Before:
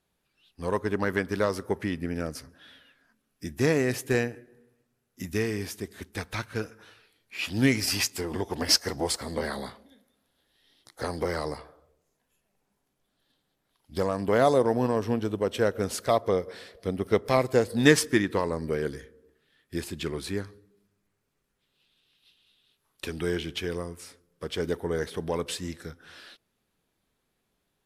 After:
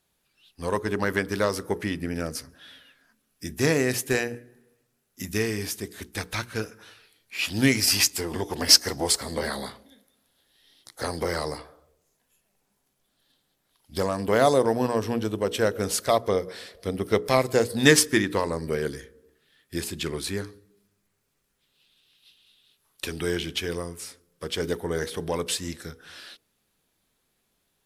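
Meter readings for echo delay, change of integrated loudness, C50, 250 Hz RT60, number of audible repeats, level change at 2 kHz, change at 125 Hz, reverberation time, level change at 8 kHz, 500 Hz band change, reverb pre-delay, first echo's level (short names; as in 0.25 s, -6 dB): none, +2.5 dB, none, none, none, +3.0 dB, +1.0 dB, none, +7.5 dB, +1.0 dB, none, none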